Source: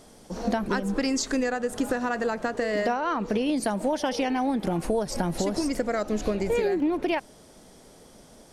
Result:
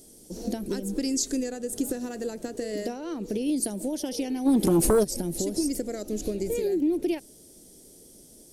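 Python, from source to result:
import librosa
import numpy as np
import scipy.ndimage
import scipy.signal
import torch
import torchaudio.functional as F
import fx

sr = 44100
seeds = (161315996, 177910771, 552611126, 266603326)

y = fx.curve_eq(x, sr, hz=(220.0, 340.0, 1100.0, 12000.0), db=(0, 6, -17, 15))
y = fx.fold_sine(y, sr, drive_db=fx.line((4.45, 5.0), (5.03, 9.0)), ceiling_db=-11.5, at=(4.45, 5.03), fade=0.02)
y = y * 10.0 ** (-4.0 / 20.0)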